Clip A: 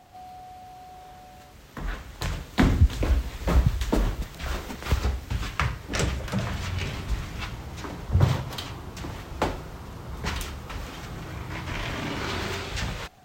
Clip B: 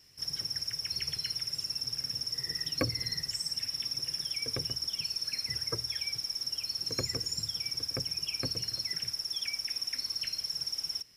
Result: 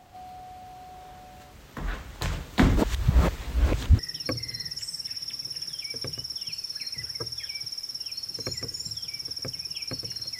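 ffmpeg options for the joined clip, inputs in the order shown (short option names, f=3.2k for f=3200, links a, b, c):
-filter_complex "[0:a]apad=whole_dur=10.39,atrim=end=10.39,asplit=2[a][b];[a]atrim=end=2.772[c];[b]atrim=start=2.768:end=3.992,asetpts=PTS-STARTPTS,areverse[d];[1:a]atrim=start=2.508:end=8.91[e];[c][d]acrossfade=d=0.004:c1=hsin:c2=hsin[f];[f][e]acrossfade=d=0.004:c1=hsin:c2=hsin"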